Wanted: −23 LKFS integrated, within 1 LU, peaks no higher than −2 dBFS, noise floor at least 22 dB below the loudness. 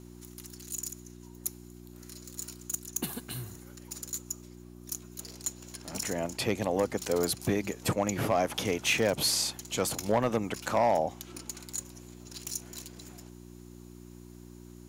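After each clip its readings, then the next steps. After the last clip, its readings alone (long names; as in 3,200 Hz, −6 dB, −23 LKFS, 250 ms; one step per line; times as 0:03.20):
share of clipped samples 0.3%; peaks flattened at −18.0 dBFS; mains hum 60 Hz; hum harmonics up to 360 Hz; level of the hum −46 dBFS; integrated loudness −31.5 LKFS; sample peak −18.0 dBFS; target loudness −23.0 LKFS
→ clipped peaks rebuilt −18 dBFS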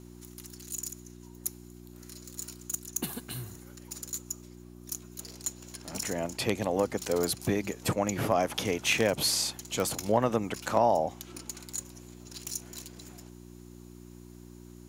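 share of clipped samples 0.0%; mains hum 60 Hz; hum harmonics up to 360 Hz; level of the hum −46 dBFS
→ hum removal 60 Hz, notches 6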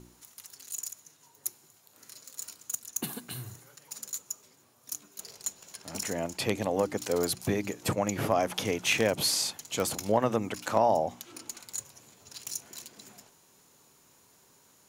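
mains hum none found; integrated loudness −31.0 LKFS; sample peak −9.0 dBFS; target loudness −23.0 LKFS
→ level +8 dB
brickwall limiter −2 dBFS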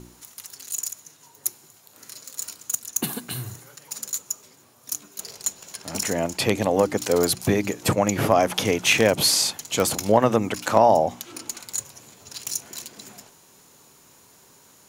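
integrated loudness −23.0 LKFS; sample peak −2.0 dBFS; background noise floor −54 dBFS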